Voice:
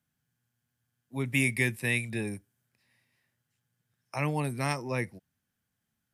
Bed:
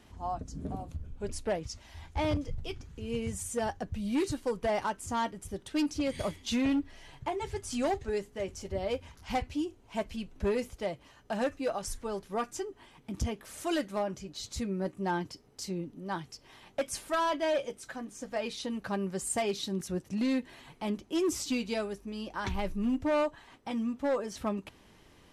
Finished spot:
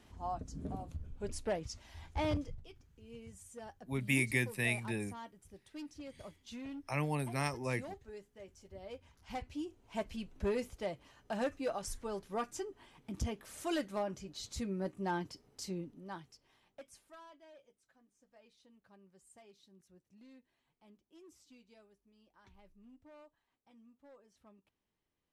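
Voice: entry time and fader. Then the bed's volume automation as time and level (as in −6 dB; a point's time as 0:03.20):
2.75 s, −5.0 dB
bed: 0:02.41 −4 dB
0:02.69 −17 dB
0:08.69 −17 dB
0:09.97 −4.5 dB
0:15.74 −4.5 dB
0:17.45 −29.5 dB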